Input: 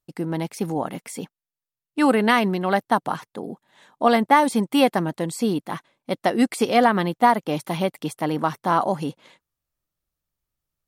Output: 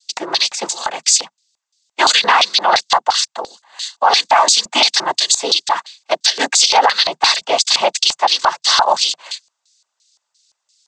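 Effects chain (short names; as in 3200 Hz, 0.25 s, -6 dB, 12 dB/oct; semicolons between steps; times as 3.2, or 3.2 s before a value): high shelf 5700 Hz +12 dB; noise vocoder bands 16; differentiator; LFO band-pass square 2.9 Hz 850–4400 Hz; in parallel at -0.5 dB: compressor, threshold -50 dBFS, peak gain reduction 17 dB; on the sum: maximiser +33 dB; gain -1 dB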